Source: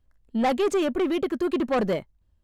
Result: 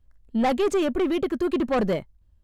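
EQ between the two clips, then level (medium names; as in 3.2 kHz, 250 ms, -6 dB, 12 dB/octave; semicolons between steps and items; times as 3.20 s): bass shelf 120 Hz +7.5 dB; 0.0 dB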